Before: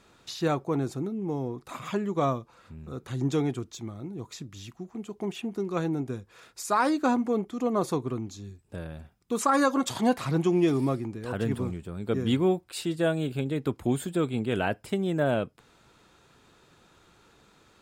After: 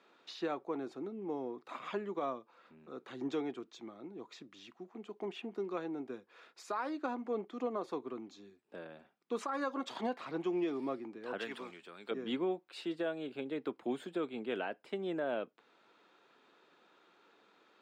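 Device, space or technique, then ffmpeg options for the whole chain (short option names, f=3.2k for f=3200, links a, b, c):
DJ mixer with the lows and highs turned down: -filter_complex "[0:a]highpass=220,asettb=1/sr,asplit=3[a][b][c];[a]atrim=end=11.384[d];[b]atrim=start=11.38:end=12.11,asetpts=PTS-STARTPTS,afade=t=in:d=0.004:c=qsin,afade=t=out:st=0.726:d=0.004:c=qsin,tiltshelf=f=970:g=-9.5[e];[c]atrim=start=12.106[f];[d][e]acrossfade=d=0.004:c1=hsin:c2=qsin[g];[g][f]acrossfade=d=0.004:c1=qsin:c2=hsin,acrossover=split=210 4500:gain=0.126 1 0.0891[h][i][j];[h][i][j]amix=inputs=3:normalize=0,alimiter=limit=-21.5dB:level=0:latency=1:release=463,volume=-5dB"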